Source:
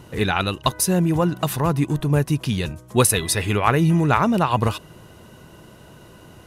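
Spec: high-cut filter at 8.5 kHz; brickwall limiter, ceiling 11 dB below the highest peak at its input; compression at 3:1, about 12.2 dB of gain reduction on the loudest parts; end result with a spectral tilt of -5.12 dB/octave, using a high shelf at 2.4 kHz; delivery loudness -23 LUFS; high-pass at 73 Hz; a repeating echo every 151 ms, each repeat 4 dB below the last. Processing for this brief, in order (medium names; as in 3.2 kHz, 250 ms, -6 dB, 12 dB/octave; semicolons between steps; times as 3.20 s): high-pass 73 Hz; low-pass 8.5 kHz; treble shelf 2.4 kHz +5 dB; compression 3:1, threshold -29 dBFS; peak limiter -21 dBFS; feedback delay 151 ms, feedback 63%, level -4 dB; trim +6.5 dB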